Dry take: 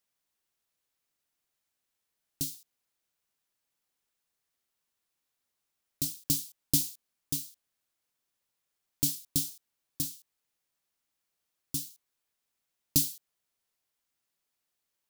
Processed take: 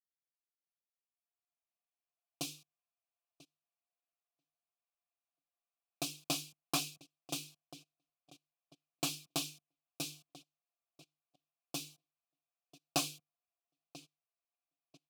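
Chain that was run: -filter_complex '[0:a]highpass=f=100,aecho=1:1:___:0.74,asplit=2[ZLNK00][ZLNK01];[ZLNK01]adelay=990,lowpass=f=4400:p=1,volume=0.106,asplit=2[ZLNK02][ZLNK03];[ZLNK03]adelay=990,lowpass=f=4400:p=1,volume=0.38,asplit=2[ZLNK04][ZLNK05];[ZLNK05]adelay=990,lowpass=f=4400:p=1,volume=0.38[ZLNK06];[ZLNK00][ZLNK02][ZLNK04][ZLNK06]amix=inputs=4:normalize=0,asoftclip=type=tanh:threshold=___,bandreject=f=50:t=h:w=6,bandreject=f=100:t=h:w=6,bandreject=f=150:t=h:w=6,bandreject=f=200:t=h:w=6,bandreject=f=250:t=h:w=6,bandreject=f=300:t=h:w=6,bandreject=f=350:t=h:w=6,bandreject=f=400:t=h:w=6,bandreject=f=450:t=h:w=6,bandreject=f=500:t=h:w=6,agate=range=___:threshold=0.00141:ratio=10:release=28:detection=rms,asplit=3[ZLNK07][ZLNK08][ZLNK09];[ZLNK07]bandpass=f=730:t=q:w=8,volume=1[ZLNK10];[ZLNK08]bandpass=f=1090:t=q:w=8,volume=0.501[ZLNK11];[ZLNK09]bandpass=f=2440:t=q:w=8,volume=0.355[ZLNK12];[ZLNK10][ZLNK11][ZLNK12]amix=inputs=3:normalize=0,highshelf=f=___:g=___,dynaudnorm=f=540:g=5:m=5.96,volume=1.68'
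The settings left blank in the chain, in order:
5.9, 0.141, 0.0794, 11000, 4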